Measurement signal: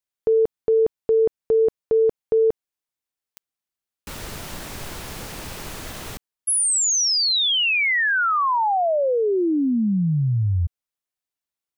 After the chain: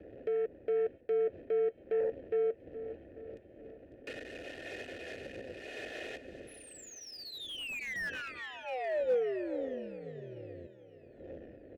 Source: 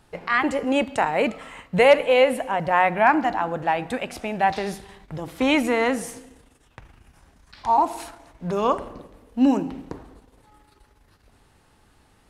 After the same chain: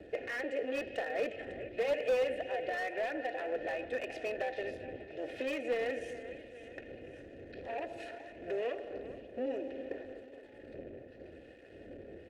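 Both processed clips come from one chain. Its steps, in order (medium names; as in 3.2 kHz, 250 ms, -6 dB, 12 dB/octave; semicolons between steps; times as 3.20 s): wind noise 120 Hz -29 dBFS; low-pass 11 kHz 12 dB/octave; comb 2.8 ms, depth 88%; compression 3:1, threshold -32 dBFS; waveshaping leveller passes 3; two-band feedback delay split 2.7 kHz, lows 421 ms, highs 550 ms, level -14 dB; AM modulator 260 Hz, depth 35%; vowel filter e; slew-rate limiter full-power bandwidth 24 Hz; trim +2 dB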